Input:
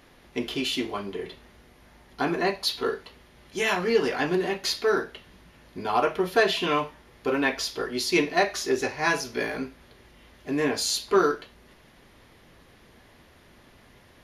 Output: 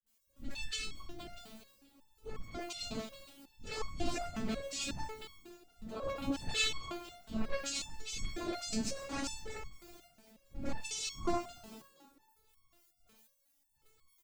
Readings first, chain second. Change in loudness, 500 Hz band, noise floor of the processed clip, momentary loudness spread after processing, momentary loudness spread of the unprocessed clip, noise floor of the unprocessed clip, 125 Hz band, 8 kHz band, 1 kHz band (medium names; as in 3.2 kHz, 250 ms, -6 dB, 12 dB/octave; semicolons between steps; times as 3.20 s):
-13.5 dB, -18.0 dB, -75 dBFS, 17 LU, 13 LU, -56 dBFS, -8.5 dB, -7.0 dB, -16.0 dB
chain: drifting ripple filter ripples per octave 1.6, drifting +1.9 Hz, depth 11 dB; gate with hold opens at -42 dBFS; peaking EQ 1.8 kHz -12.5 dB 1.5 oct; noise-vocoded speech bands 8; added noise blue -66 dBFS; transient shaper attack -8 dB, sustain +12 dB; phase dispersion highs, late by 65 ms, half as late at 550 Hz; frequency shift -240 Hz; on a send: frequency-shifting echo 236 ms, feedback 51%, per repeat +47 Hz, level -18 dB; on the sum: resonator arpeggio 5.5 Hz 220–1100 Hz; trim +5 dB